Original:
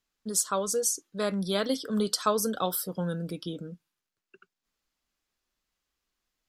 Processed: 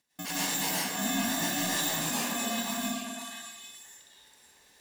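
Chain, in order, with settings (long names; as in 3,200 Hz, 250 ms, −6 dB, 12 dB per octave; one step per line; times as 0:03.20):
samples in bit-reversed order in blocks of 128 samples
high-pass filter 130 Hz 12 dB per octave
notch filter 980 Hz, Q 13
in parallel at +1 dB: output level in coarse steps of 21 dB
on the sum: brickwall limiter −29.5 dBFS, peak gain reduction 19 dB
reversed playback
upward compression, threshold −57 dBFS
reversed playback
high-frequency loss of the air 53 metres
echo through a band-pass that steps 357 ms, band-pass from 350 Hz, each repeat 1.4 octaves, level 0 dB
comb and all-pass reverb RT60 1.3 s, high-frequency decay 0.85×, pre-delay 105 ms, DRR −7.5 dB
wrong playback speed 33 rpm record played at 45 rpm
level +7 dB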